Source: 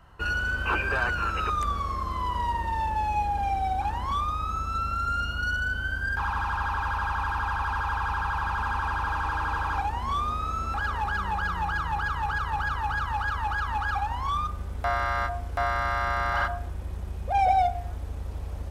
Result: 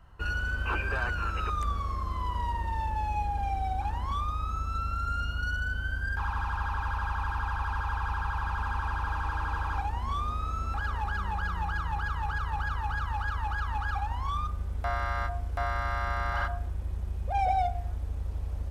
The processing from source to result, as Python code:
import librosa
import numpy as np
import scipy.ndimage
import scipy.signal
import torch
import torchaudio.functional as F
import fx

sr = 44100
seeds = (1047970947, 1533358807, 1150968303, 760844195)

y = fx.low_shelf(x, sr, hz=100.0, db=9.0)
y = y * librosa.db_to_amplitude(-5.5)